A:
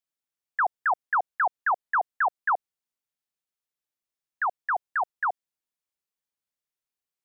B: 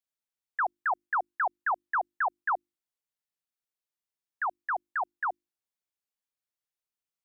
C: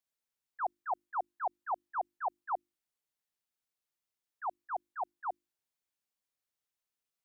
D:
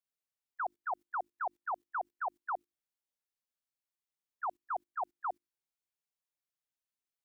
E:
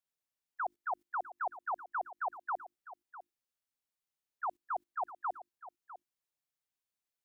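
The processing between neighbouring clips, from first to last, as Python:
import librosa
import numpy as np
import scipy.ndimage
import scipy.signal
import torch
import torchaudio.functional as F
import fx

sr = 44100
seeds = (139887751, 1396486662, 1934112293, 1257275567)

y1 = fx.hum_notches(x, sr, base_hz=50, count=7)
y1 = F.gain(torch.from_numpy(y1), -4.0).numpy()
y2 = fx.auto_swell(y1, sr, attack_ms=119.0)
y2 = F.gain(torch.from_numpy(y2), 1.0).numpy()
y3 = fx.level_steps(y2, sr, step_db=21)
y3 = F.gain(torch.from_numpy(y3), 8.5).numpy()
y4 = y3 + 10.0 ** (-14.5 / 20.0) * np.pad(y3, (int(652 * sr / 1000.0), 0))[:len(y3)]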